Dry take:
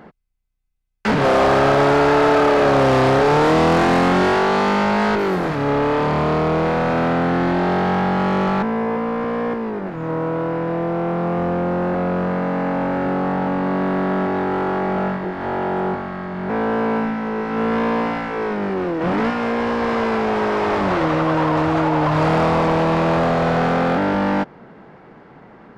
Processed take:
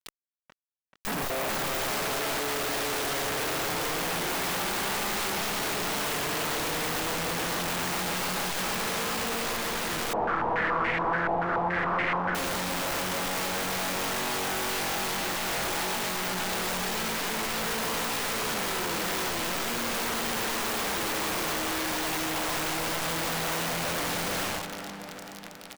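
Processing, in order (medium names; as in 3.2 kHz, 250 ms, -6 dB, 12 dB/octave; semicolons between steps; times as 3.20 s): distance through air 98 m; hum notches 50/100/150/200 Hz; simulated room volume 430 m³, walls furnished, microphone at 0.72 m; fuzz box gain 43 dB, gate -36 dBFS; peak limiter -22.5 dBFS, peak gain reduction 12 dB; feedback delay 435 ms, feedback 59%, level -16 dB; waveshaping leveller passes 2; integer overflow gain 22 dB; bass shelf 460 Hz -5 dB; 10.13–12.35 s: step-sequenced low-pass 7 Hz 790–2100 Hz; trim -5.5 dB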